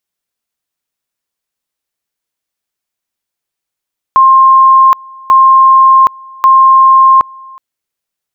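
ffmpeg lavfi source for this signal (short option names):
-f lavfi -i "aevalsrc='pow(10,(-1.5-27*gte(mod(t,1.14),0.77))/20)*sin(2*PI*1060*t)':d=3.42:s=44100"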